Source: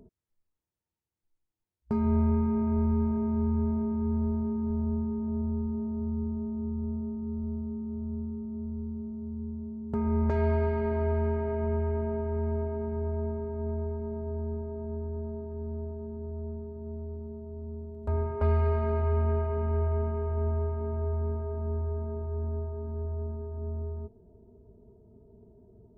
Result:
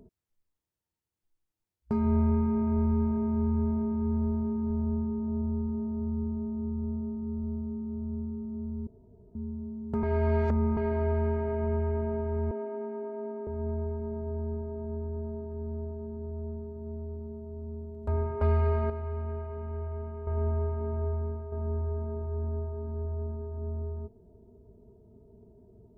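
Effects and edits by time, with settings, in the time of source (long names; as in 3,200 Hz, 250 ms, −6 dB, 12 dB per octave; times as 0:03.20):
0:05.07–0:05.69: low-pass filter 2,000 Hz
0:08.87–0:09.35: fill with room tone
0:10.03–0:10.77: reverse
0:12.51–0:13.47: Chebyshev high-pass filter 230 Hz, order 6
0:18.90–0:20.27: clip gain −8 dB
0:21.06–0:21.52: fade out, to −7 dB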